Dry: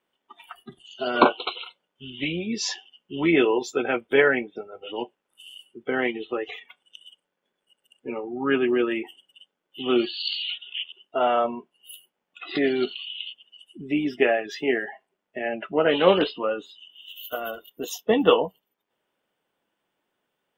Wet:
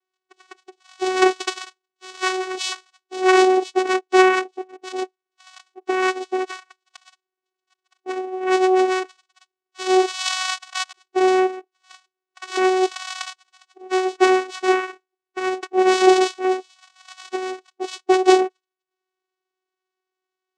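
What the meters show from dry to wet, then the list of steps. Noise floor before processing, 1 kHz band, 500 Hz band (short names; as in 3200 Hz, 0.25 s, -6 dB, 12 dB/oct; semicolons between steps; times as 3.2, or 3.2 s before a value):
-81 dBFS, +8.0 dB, +4.5 dB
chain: sample leveller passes 2; band shelf 3100 Hz +10 dB; vocoder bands 4, saw 373 Hz; gain -4 dB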